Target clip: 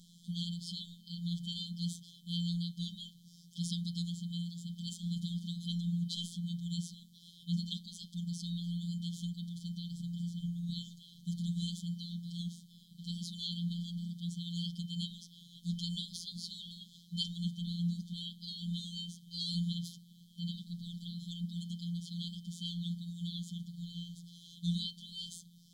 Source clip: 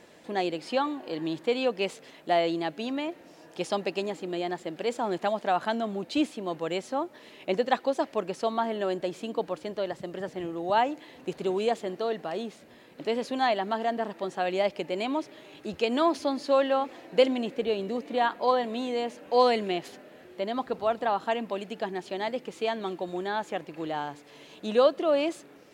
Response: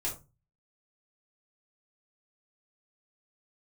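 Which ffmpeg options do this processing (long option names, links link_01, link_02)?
-filter_complex "[0:a]asplit=2[link_01][link_02];[1:a]atrim=start_sample=2205,lowpass=2100[link_03];[link_02][link_03]afir=irnorm=-1:irlink=0,volume=-5dB[link_04];[link_01][link_04]amix=inputs=2:normalize=0,afftfilt=real='hypot(re,im)*cos(PI*b)':imag='0':win_size=1024:overlap=0.75,afftfilt=real='re*(1-between(b*sr/4096,220,3100))':imag='im*(1-between(b*sr/4096,220,3100))':win_size=4096:overlap=0.75,volume=3dB"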